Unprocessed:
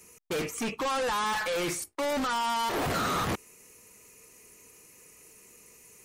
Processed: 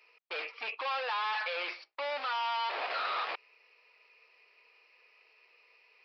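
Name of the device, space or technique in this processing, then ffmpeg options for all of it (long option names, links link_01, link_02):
musical greeting card: -af "aresample=11025,aresample=44100,highpass=frequency=570:width=0.5412,highpass=frequency=570:width=1.3066,equalizer=frequency=2500:width_type=o:width=0.32:gain=7,volume=-4dB"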